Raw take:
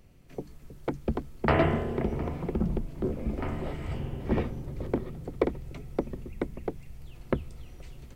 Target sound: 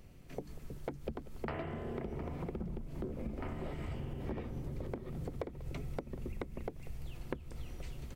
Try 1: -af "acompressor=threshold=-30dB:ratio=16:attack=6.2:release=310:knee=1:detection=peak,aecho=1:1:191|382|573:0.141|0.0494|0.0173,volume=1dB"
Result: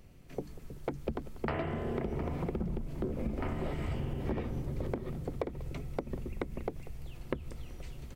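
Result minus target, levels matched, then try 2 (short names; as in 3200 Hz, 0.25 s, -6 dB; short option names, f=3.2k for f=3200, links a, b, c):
compressor: peak gain reduction -5.5 dB
-af "acompressor=threshold=-36dB:ratio=16:attack=6.2:release=310:knee=1:detection=peak,aecho=1:1:191|382|573:0.141|0.0494|0.0173,volume=1dB"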